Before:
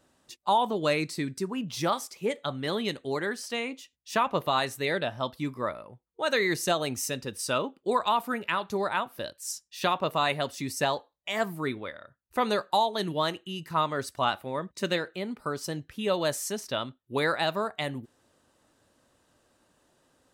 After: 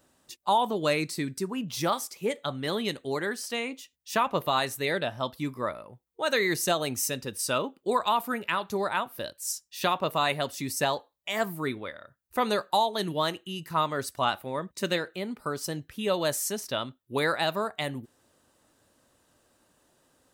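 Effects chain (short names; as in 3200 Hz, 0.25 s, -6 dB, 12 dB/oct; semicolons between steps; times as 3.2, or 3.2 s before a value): high shelf 11000 Hz +10.5 dB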